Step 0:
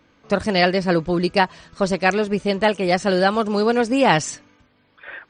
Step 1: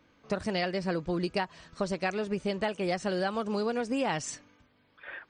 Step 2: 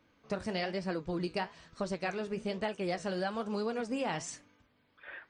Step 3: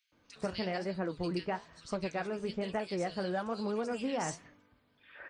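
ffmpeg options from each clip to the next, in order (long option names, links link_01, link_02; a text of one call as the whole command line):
ffmpeg -i in.wav -af "acompressor=threshold=-20dB:ratio=6,volume=-6.5dB" out.wav
ffmpeg -i in.wav -af "flanger=delay=8.8:depth=8.8:regen=-68:speed=1.1:shape=sinusoidal" out.wav
ffmpeg -i in.wav -filter_complex "[0:a]acrossover=split=2400[link_01][link_02];[link_01]adelay=120[link_03];[link_03][link_02]amix=inputs=2:normalize=0" out.wav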